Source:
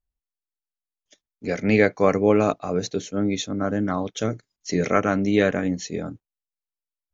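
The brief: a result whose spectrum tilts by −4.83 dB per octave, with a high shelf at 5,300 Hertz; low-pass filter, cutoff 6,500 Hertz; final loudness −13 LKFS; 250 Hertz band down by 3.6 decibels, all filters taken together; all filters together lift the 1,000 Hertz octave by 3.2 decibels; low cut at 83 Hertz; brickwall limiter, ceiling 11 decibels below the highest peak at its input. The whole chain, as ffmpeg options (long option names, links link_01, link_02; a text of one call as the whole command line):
ffmpeg -i in.wav -af "highpass=83,lowpass=6500,equalizer=frequency=250:width_type=o:gain=-5,equalizer=frequency=1000:width_type=o:gain=4.5,highshelf=frequency=5300:gain=5.5,volume=14dB,alimiter=limit=0dB:level=0:latency=1" out.wav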